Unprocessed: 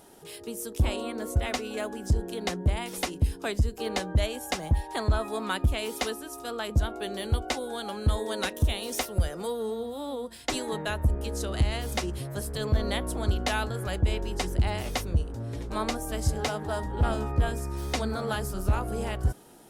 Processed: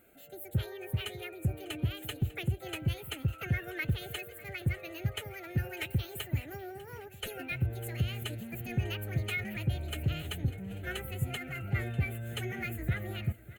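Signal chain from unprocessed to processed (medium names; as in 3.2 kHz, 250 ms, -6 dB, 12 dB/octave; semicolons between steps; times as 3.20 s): dynamic bell 1.8 kHz, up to +6 dB, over -47 dBFS, Q 1.8; wide varispeed 1.45×; static phaser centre 2.2 kHz, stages 4; formant-preserving pitch shift +2.5 st; feedback delay 597 ms, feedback 56%, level -18.5 dB; trim -5.5 dB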